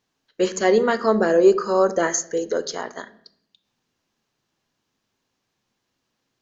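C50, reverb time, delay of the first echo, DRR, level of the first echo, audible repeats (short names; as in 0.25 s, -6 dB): 16.5 dB, 0.65 s, none, 12.0 dB, none, none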